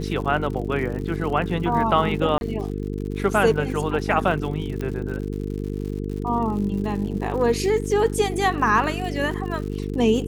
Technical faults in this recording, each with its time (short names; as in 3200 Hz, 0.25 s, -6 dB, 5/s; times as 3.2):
buzz 50 Hz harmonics 9 -28 dBFS
crackle 110/s -32 dBFS
2.38–2.41 gap 31 ms
4.81 pop -17 dBFS